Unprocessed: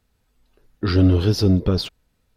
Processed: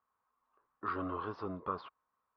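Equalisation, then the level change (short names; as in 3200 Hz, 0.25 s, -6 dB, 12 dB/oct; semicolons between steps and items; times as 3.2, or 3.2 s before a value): band-pass 1100 Hz, Q 11; air absorption 300 m; +9.5 dB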